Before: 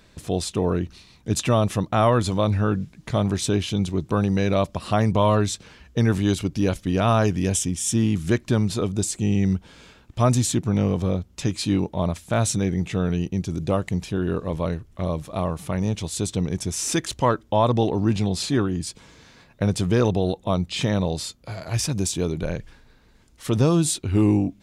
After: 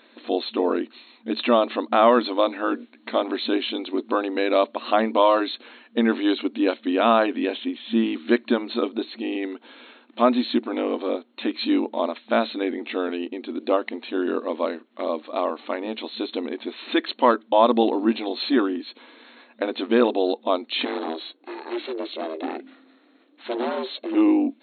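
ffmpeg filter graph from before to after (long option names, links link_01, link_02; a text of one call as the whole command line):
ffmpeg -i in.wav -filter_complex "[0:a]asettb=1/sr,asplit=3[link_01][link_02][link_03];[link_01]atrim=end=20.854[link_04];[link_02]atrim=start=20.85:end=24.15,asetpts=PTS-STARTPTS,afade=type=in:duration=0.004:curve=qsin,afade=type=out:start_time=3.296:duration=0.004:curve=qsin,aeval=exprs='val(0)*sin(2*PI*240*n/s)':channel_layout=same,volume=23dB,asoftclip=hard,volume=-23dB[link_05];[link_03]atrim=start=24.146[link_06];[link_04][link_05]acrossfade=duration=0.004:curve1=hsin:curve2=qsin[link_07];[link_07][link_06]acrossfade=duration=0.004:curve1=qsin:curve2=hsin,afftfilt=real='re*between(b*sr/4096,220,4300)':imag='im*between(b*sr/4096,220,4300)':win_size=4096:overlap=0.75,bandreject=frequency=420:width=12,volume=3.5dB" out.wav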